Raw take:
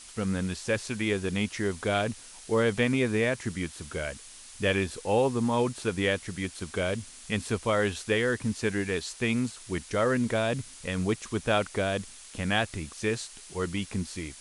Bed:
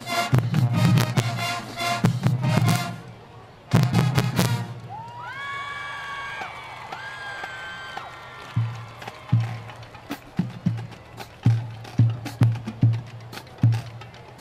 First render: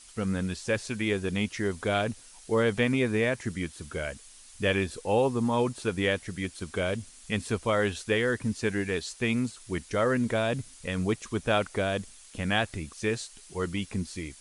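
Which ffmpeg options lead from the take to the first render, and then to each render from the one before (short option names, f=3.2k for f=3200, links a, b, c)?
-af "afftdn=nr=6:nf=-48"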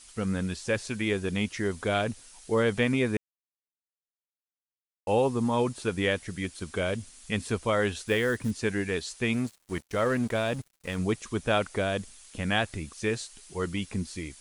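-filter_complex "[0:a]asettb=1/sr,asplit=3[a][b][c];[a]atrim=end=8.074[d];[b]atrim=start=8.07:end=8.51,asetpts=PTS-STARTPTS,afade=t=in:d=0.004:c=qsin,afade=t=out:st=0.436:d=0.004:c=qsin,acrusher=bits=6:mode=log:mix=0:aa=0.000001[e];[c]atrim=start=8.506[f];[d][e]acrossfade=d=0.004:c1=hsin:c2=qsin[g];[g][f]acrossfade=d=0.004:c1=qsin:c2=hsin,asettb=1/sr,asplit=3[h][i][j];[h]atrim=end=9.334[k];[i]atrim=start=9.33:end=10.99,asetpts=PTS-STARTPTS,afade=t=in:d=0.004:c=qsin,afade=t=out:st=1.656:d=0.004:c=qsin,aeval=exprs='sgn(val(0))*max(abs(val(0))-0.00668,0)':c=same[l];[j]atrim=start=10.986[m];[k][l]acrossfade=d=0.004:c1=hsin:c2=qsin[n];[n][m]acrossfade=d=0.004:c1=qsin:c2=hsin,asplit=3[o][p][q];[o]atrim=end=3.17,asetpts=PTS-STARTPTS,afade=t=out:st=3.166:d=0.004:c=hsin[r];[p]atrim=start=3.17:end=5.07,asetpts=PTS-STARTPTS,volume=0[s];[q]atrim=start=5.07,asetpts=PTS-STARTPTS,afade=t=in:d=0.004:c=hsin[t];[r][s][t]concat=n=3:v=0:a=1"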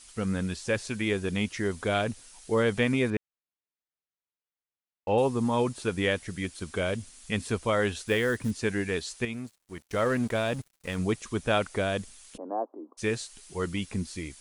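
-filter_complex "[0:a]asettb=1/sr,asplit=3[a][b][c];[a]atrim=end=3.104[d];[b]atrim=start=3.1:end=5.18,asetpts=PTS-STARTPTS,afade=t=in:d=0.004:c=qsin,afade=t=out:st=2.076:d=0.004:c=qsin,lowpass=3.5k[e];[c]atrim=start=5.176[f];[d][e]acrossfade=d=0.004:c1=hsin:c2=qsin[g];[g][f]acrossfade=d=0.004:c1=qsin:c2=hsin,asplit=3[h][i][j];[h]afade=t=out:st=12.36:d=0.02[k];[i]asuperpass=centerf=530:order=12:qfactor=0.67,afade=t=in:st=12.36:d=0.02,afade=t=out:st=12.97:d=0.02[l];[j]afade=t=in:st=12.97:d=0.02[m];[k][l][m]amix=inputs=3:normalize=0,asplit=3[n][o][p];[n]atrim=end=9.252[q];[o]atrim=start=9.248:end=9.812,asetpts=PTS-STARTPTS,volume=-8.5dB[r];[p]atrim=start=9.808[s];[q][r]acrossfade=d=0.004:c1=hsin:c2=hsin[t];[t][s]acrossfade=d=0.004:c1=hsin:c2=hsin"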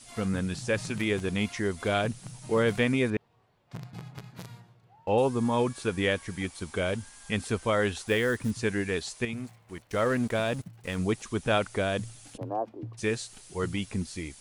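-filter_complex "[1:a]volume=-22.5dB[a];[0:a][a]amix=inputs=2:normalize=0"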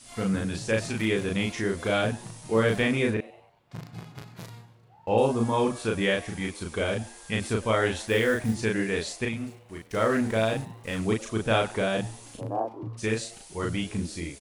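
-filter_complex "[0:a]asplit=2[a][b];[b]adelay=36,volume=-2dB[c];[a][c]amix=inputs=2:normalize=0,asplit=5[d][e][f][g][h];[e]adelay=96,afreqshift=120,volume=-20.5dB[i];[f]adelay=192,afreqshift=240,volume=-26.9dB[j];[g]adelay=288,afreqshift=360,volume=-33.3dB[k];[h]adelay=384,afreqshift=480,volume=-39.6dB[l];[d][i][j][k][l]amix=inputs=5:normalize=0"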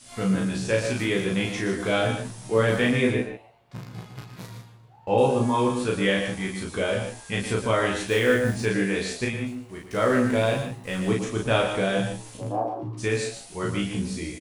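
-filter_complex "[0:a]asplit=2[a][b];[b]adelay=16,volume=-4dB[c];[a][c]amix=inputs=2:normalize=0,aecho=1:1:116.6|148.7:0.355|0.282"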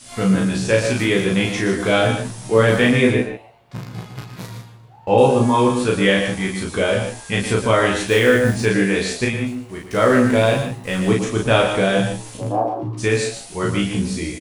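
-af "volume=7dB,alimiter=limit=-2dB:level=0:latency=1"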